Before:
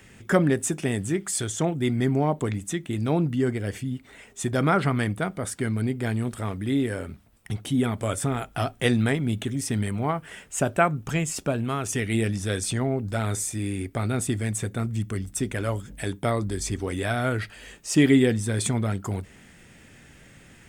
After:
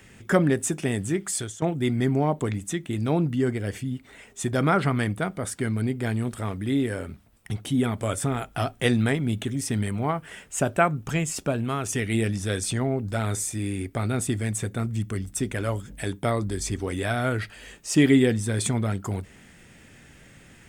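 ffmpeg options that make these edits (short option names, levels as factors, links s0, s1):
-filter_complex "[0:a]asplit=2[s0][s1];[s0]atrim=end=1.62,asetpts=PTS-STARTPTS,afade=t=out:st=1.32:d=0.3:silence=0.188365[s2];[s1]atrim=start=1.62,asetpts=PTS-STARTPTS,afade=t=in:d=0.004:c=hsin:silence=0.188365[s3];[s2][s3]concat=n=2:v=0:a=1"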